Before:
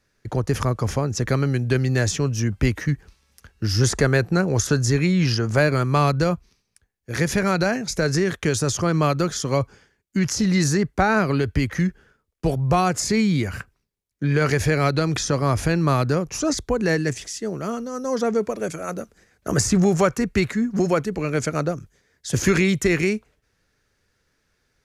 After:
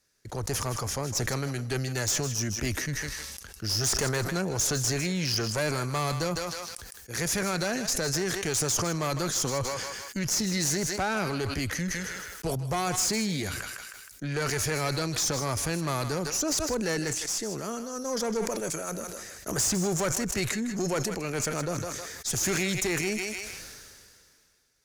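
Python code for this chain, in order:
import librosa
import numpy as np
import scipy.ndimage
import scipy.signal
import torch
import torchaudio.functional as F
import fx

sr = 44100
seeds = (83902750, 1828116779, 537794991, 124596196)

p1 = fx.bass_treble(x, sr, bass_db=-4, treble_db=12)
p2 = fx.tube_stage(p1, sr, drive_db=17.0, bias=0.4)
p3 = p2 + fx.echo_thinned(p2, sr, ms=157, feedback_pct=20, hz=660.0, wet_db=-11, dry=0)
p4 = fx.sustainer(p3, sr, db_per_s=27.0)
y = F.gain(torch.from_numpy(p4), -5.5).numpy()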